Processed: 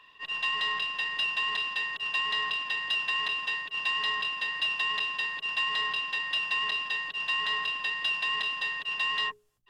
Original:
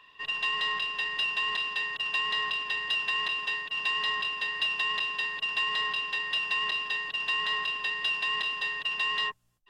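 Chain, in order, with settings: hum notches 60/120/180/240/300/360/420 Hz; attacks held to a fixed rise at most 360 dB/s

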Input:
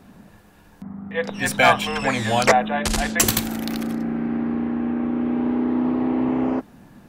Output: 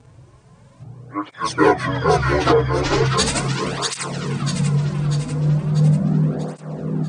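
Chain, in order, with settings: frequency-domain pitch shifter -8.5 st; two-band feedback delay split 1.1 kHz, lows 437 ms, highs 642 ms, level -3.5 dB; cancelling through-zero flanger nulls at 0.38 Hz, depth 5.6 ms; trim +4.5 dB

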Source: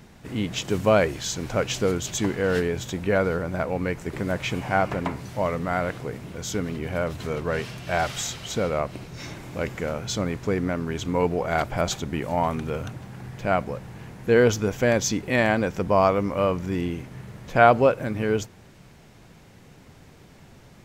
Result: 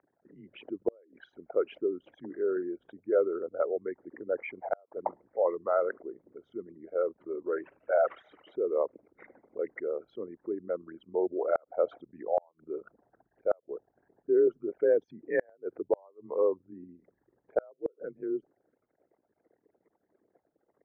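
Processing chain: resonances exaggerated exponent 3; mistuned SSB -77 Hz 530–2000 Hz; inverted gate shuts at -14 dBFS, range -37 dB

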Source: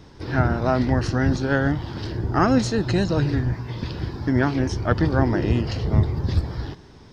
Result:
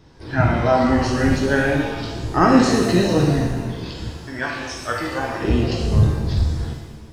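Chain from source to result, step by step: 4.09–5.41 s: bass shelf 500 Hz -12 dB; spectral noise reduction 7 dB; pitch-shifted reverb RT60 1.2 s, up +7 st, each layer -8 dB, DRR -1.5 dB; trim +1.5 dB

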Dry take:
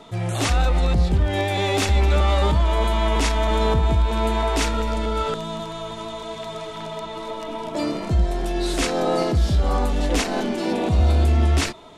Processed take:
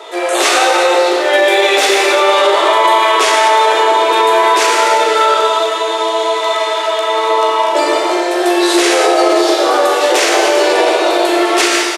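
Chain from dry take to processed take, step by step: Chebyshev high-pass 340 Hz, order 6; peaking EQ 1.8 kHz +2 dB; doubling 17 ms -7.5 dB; Schroeder reverb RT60 1.7 s, combs from 28 ms, DRR -1 dB; loudness maximiser +14.5 dB; trim -1 dB

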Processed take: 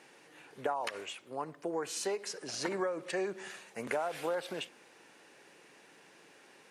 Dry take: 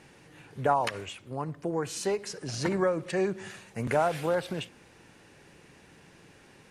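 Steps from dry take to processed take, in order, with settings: high-pass 350 Hz 12 dB/octave; compression 12:1, threshold -28 dBFS, peak gain reduction 9.5 dB; trim -1.5 dB

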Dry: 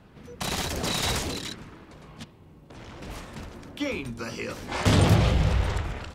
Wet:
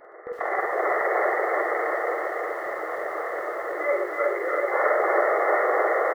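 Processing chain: peak limiter -17.5 dBFS, peak gain reduction 9 dB; granulator 100 ms, grains 20 per s, spray 39 ms, pitch spread up and down by 0 st; comb 1.6 ms, depth 64%; echo that smears into a reverb 933 ms, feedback 51%, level -12 dB; FFT band-pass 310–2200 Hz; gate with hold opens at -42 dBFS; upward compressor, threshold -35 dBFS; multi-tap echo 47/52/122/370/385/741 ms -4.5/-12/-7/-19.5/-5.5/-3 dB; bit-crushed delay 321 ms, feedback 55%, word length 10-bit, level -3.5 dB; trim +6.5 dB

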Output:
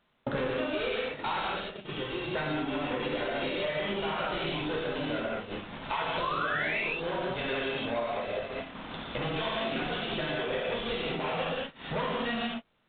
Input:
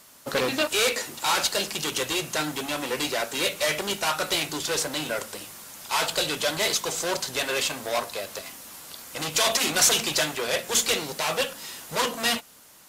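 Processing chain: tilt EQ -2 dB/octave; 6.39–6.92 s: flutter echo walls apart 4.5 m, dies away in 0.33 s; 6.20–6.79 s: painted sound rise 980–2800 Hz -22 dBFS; 1.55–2.34 s: feedback comb 120 Hz, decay 0.76 s, harmonics odd, mix 80%; gated-style reverb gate 240 ms flat, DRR -6 dB; compression 5:1, threshold -36 dBFS, peak gain reduction 22.5 dB; gate -40 dBFS, range -33 dB; trim +5 dB; A-law 64 kbps 8 kHz

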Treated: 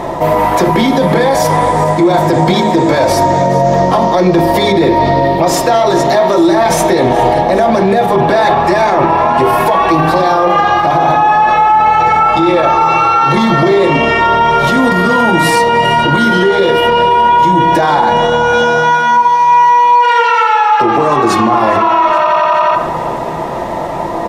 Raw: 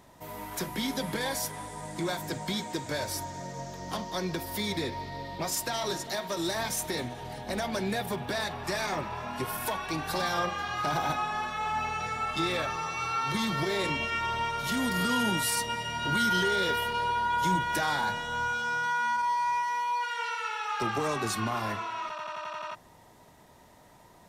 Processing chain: low-pass 2.7 kHz 6 dB/octave; peaking EQ 670 Hz +10.5 dB 2 oct; band-stop 1.5 kHz, Q 13; comb 5.9 ms, depth 39%; reverse; compression 4:1, threshold -35 dBFS, peak gain reduction 15.5 dB; reverse; thinning echo 418 ms, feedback 62%, level -19 dB; on a send at -5.5 dB: reverberation RT60 0.70 s, pre-delay 3 ms; on the sum: loudness maximiser +30.5 dB; trim -1 dB

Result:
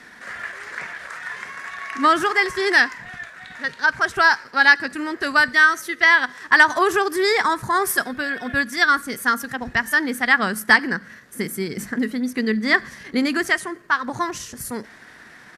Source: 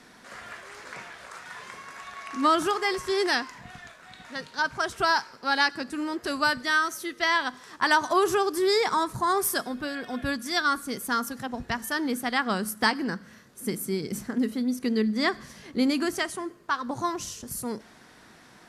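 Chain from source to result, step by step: peaking EQ 1.8 kHz +11 dB 0.7 oct; tempo 1.2×; trim +3 dB

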